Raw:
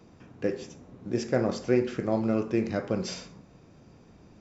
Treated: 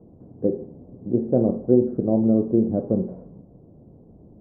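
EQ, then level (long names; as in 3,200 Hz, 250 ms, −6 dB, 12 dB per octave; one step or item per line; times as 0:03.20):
inverse Chebyshev low-pass filter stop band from 3,800 Hz, stop band 80 dB
dynamic equaliser 230 Hz, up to +4 dB, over −38 dBFS, Q 2
+5.5 dB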